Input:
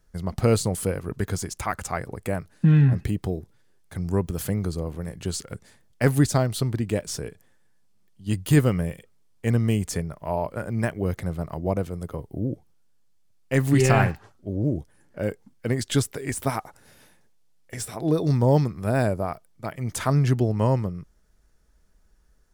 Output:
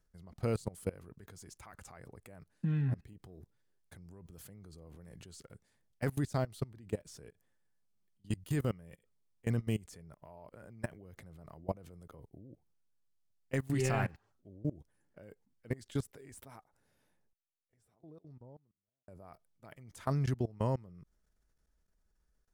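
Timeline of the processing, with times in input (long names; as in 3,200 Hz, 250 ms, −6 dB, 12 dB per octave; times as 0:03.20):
0:03.13–0:04.26: downward compressor, threshold −27 dBFS
0:15.30–0:19.08: fade out and dull
whole clip: output level in coarse steps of 22 dB; level −8.5 dB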